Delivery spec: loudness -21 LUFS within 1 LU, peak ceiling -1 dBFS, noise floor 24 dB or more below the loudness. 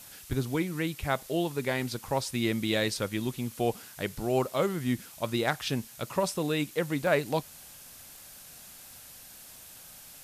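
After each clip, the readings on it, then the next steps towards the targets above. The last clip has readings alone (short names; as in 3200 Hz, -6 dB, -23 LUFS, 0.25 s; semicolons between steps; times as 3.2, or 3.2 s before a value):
dropouts 2; longest dropout 1.2 ms; noise floor -49 dBFS; noise floor target -55 dBFS; loudness -30.5 LUFS; peak -14.0 dBFS; loudness target -21.0 LUFS
-> interpolate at 0.33/7.07, 1.2 ms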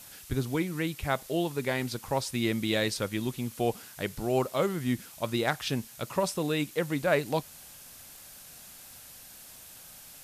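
dropouts 0; noise floor -49 dBFS; noise floor target -55 dBFS
-> denoiser 6 dB, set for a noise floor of -49 dBFS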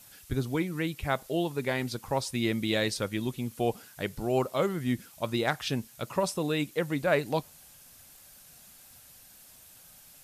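noise floor -54 dBFS; noise floor target -55 dBFS
-> denoiser 6 dB, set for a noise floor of -54 dBFS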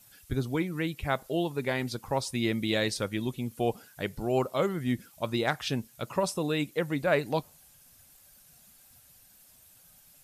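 noise floor -58 dBFS; loudness -30.5 LUFS; peak -14.0 dBFS; loudness target -21.0 LUFS
-> gain +9.5 dB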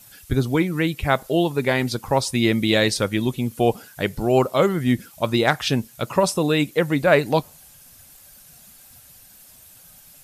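loudness -21.0 LUFS; peak -4.5 dBFS; noise floor -49 dBFS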